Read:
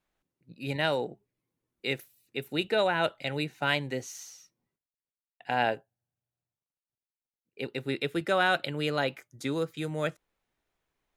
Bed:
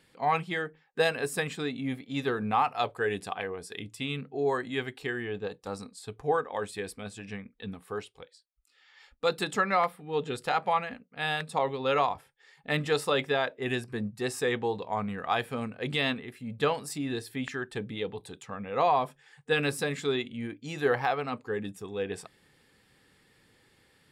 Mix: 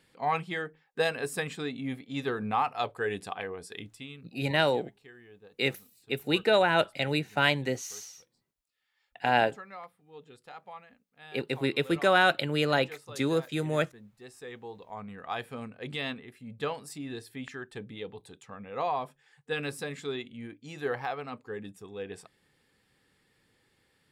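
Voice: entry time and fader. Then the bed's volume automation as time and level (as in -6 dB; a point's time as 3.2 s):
3.75 s, +3.0 dB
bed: 3.79 s -2 dB
4.36 s -19 dB
14.08 s -19 dB
15.4 s -6 dB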